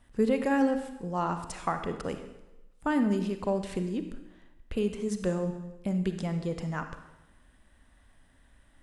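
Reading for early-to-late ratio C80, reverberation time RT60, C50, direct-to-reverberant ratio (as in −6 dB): 10.5 dB, 1.0 s, 8.5 dB, 7.5 dB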